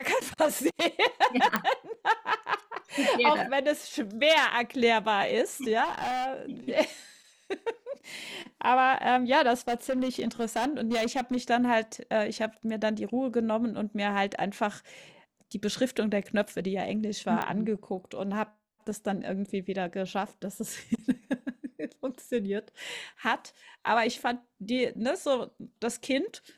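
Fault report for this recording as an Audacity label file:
1.560000	1.560000	pop -10 dBFS
5.840000	6.270000	clipped -28 dBFS
9.680000	11.370000	clipped -24 dBFS
17.420000	17.420000	pop -17 dBFS

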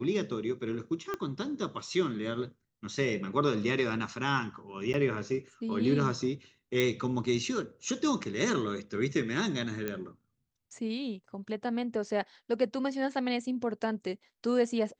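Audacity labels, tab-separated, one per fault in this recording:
1.140000	1.140000	pop -20 dBFS
4.930000	4.940000	dropout 9.4 ms
6.800000	6.800000	pop -14 dBFS
9.880000	9.880000	pop -19 dBFS

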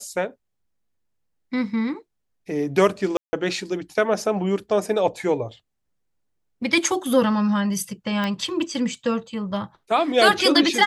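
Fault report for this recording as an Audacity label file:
3.170000	3.330000	dropout 160 ms
8.240000	8.240000	pop -14 dBFS

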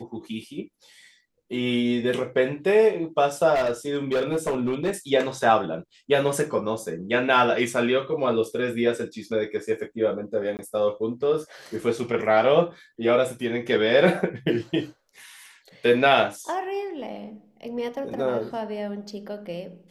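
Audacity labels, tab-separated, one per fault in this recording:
3.540000	4.910000	clipped -19.5 dBFS
10.570000	10.590000	dropout 19 ms

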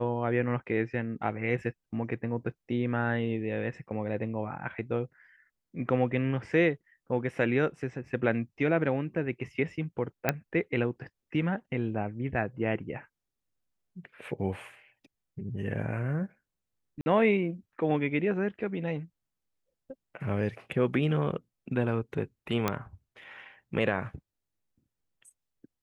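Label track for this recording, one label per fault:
10.290000	10.290000	pop -10 dBFS
17.010000	17.060000	dropout 50 ms
22.680000	22.680000	pop -12 dBFS

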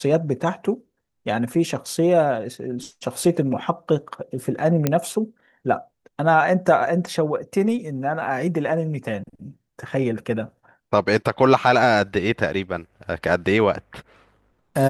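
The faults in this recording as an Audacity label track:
4.870000	4.870000	pop -5 dBFS

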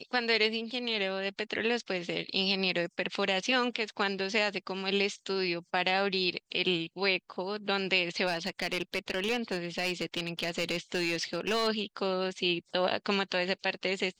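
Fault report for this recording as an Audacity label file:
8.260000	11.680000	clipped -24.5 dBFS

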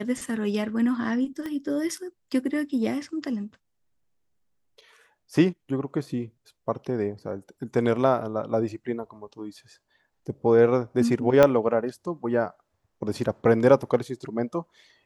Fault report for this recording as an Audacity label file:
1.460000	1.460000	pop -22 dBFS
11.430000	11.430000	pop -6 dBFS

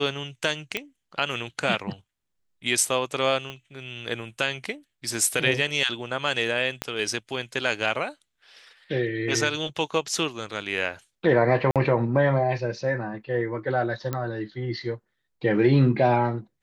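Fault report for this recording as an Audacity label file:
0.770000	0.770000	pop -12 dBFS
3.500000	3.500000	pop -22 dBFS
6.820000	6.820000	pop -11 dBFS
11.710000	11.760000	dropout 47 ms
14.130000	14.130000	pop -14 dBFS

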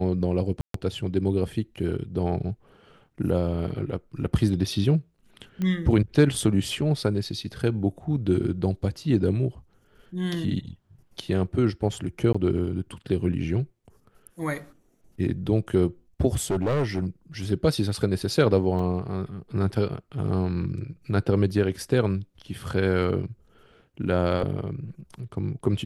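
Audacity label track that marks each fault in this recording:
0.610000	0.740000	dropout 133 ms
5.620000	5.620000	pop -18 dBFS
12.330000	12.350000	dropout 15 ms
16.370000	17.060000	clipped -20.5 dBFS
18.790000	18.790000	dropout 3.3 ms

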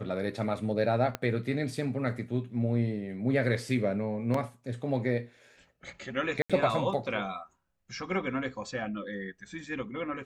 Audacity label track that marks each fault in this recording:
1.150000	1.150000	pop -16 dBFS
4.340000	4.340000	dropout 3.5 ms
6.420000	6.500000	dropout 76 ms

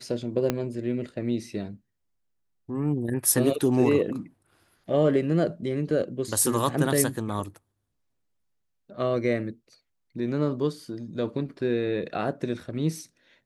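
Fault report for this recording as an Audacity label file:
0.500000	0.500000	pop -10 dBFS

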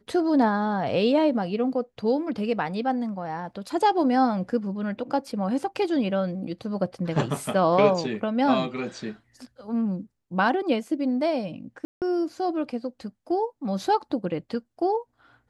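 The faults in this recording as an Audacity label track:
11.850000	12.020000	dropout 168 ms

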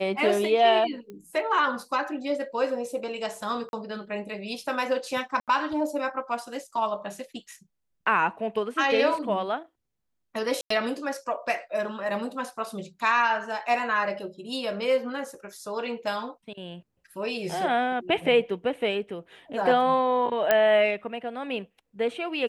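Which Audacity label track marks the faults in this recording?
1.100000	1.100000	pop -29 dBFS
3.690000	3.730000	dropout 41 ms
5.400000	5.480000	dropout 77 ms
10.610000	10.700000	dropout 94 ms
20.510000	20.510000	pop -7 dBFS

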